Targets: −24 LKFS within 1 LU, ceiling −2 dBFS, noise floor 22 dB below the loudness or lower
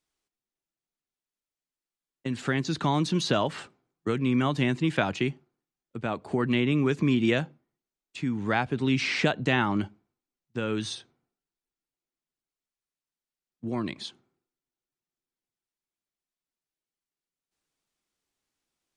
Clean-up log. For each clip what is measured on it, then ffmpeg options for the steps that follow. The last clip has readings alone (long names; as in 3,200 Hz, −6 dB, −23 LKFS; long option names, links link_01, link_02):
integrated loudness −27.5 LKFS; sample peak −9.0 dBFS; target loudness −24.0 LKFS
→ -af "volume=3.5dB"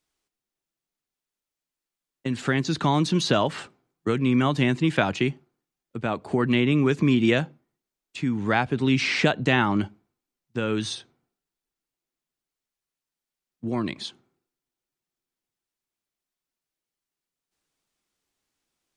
integrated loudness −24.0 LKFS; sample peak −5.5 dBFS; background noise floor −89 dBFS